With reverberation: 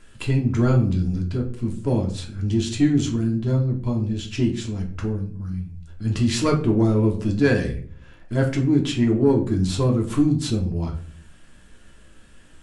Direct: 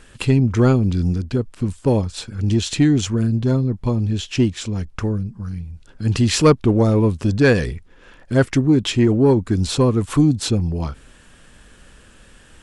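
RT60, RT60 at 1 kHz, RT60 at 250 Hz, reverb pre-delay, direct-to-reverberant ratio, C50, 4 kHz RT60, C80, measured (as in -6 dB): 0.50 s, 0.40 s, 0.70 s, 3 ms, 0.0 dB, 10.5 dB, 0.30 s, 14.0 dB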